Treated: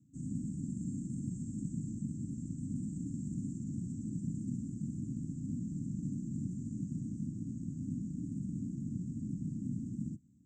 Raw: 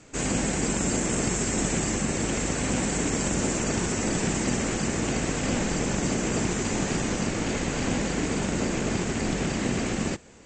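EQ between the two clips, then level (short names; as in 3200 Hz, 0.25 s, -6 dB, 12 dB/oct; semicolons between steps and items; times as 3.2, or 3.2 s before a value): resonant high-pass 290 Hz, resonance Q 3.6; inverse Chebyshev band-stop 420–4300 Hz, stop band 60 dB; air absorption 160 m; +8.0 dB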